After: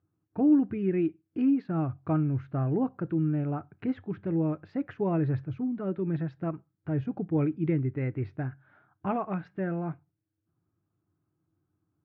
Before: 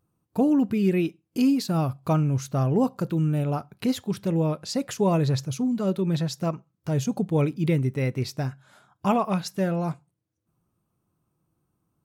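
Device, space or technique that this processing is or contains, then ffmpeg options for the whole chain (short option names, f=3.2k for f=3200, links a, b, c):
bass cabinet: -af "highpass=77,equalizer=f=95:t=q:w=4:g=10,equalizer=f=220:t=q:w=4:g=-5,equalizer=f=310:t=q:w=4:g=8,equalizer=f=530:t=q:w=4:g=-5,equalizer=f=1k:t=q:w=4:g=-5,equalizer=f=1.6k:t=q:w=4:g=4,lowpass=f=2.1k:w=0.5412,lowpass=f=2.1k:w=1.3066,volume=-5.5dB"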